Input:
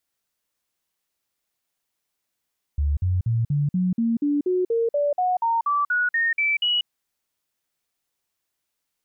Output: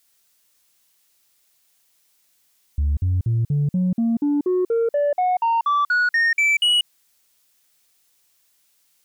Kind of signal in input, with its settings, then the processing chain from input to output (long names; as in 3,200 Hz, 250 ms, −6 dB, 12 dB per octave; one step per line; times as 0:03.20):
stepped sweep 72.5 Hz up, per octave 3, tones 17, 0.19 s, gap 0.05 s −18.5 dBFS
high-shelf EQ 2,300 Hz +10 dB
in parallel at +3 dB: brickwall limiter −27 dBFS
on the sum: soft clipping −14.5 dBFS